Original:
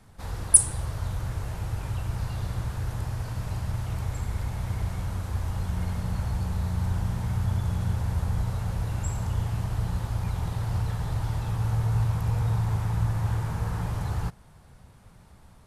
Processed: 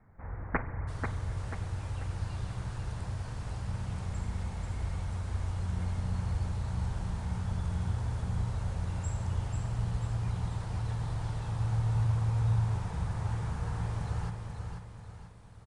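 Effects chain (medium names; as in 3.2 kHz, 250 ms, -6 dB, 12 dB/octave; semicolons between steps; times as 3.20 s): tracing distortion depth 0.23 ms; steep low-pass 2.2 kHz 72 dB/octave, from 0.87 s 10 kHz; feedback delay 489 ms, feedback 43%, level -5.5 dB; spring tank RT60 3 s, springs 44 ms, chirp 70 ms, DRR 13 dB; trim -6.5 dB; Opus 64 kbps 48 kHz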